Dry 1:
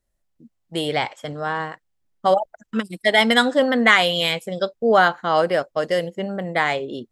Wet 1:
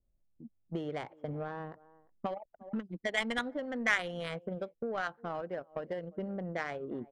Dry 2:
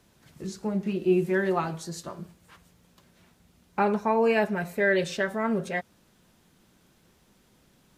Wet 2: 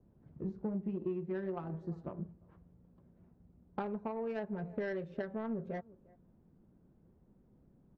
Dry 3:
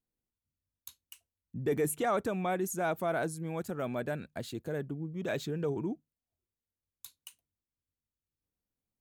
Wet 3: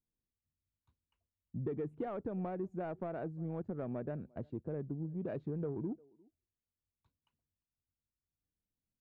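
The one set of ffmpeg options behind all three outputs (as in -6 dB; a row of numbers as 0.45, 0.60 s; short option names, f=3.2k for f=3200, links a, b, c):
-filter_complex "[0:a]asplit=2[a][b];[b]adelay=350,highpass=300,lowpass=3.4k,asoftclip=type=hard:threshold=-10dB,volume=-25dB[c];[a][c]amix=inputs=2:normalize=0,acrossover=split=1900[d][e];[d]acompressor=threshold=-32dB:ratio=16[f];[f][e]amix=inputs=2:normalize=0,asoftclip=type=tanh:threshold=-9dB,adynamicsmooth=sensitivity=0.5:basefreq=500,adynamicequalizer=threshold=0.00282:dfrequency=2100:dqfactor=0.7:tfrequency=2100:tqfactor=0.7:attack=5:release=100:ratio=0.375:range=3:mode=cutabove:tftype=highshelf"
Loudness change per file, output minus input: -17.0, -13.0, -6.5 LU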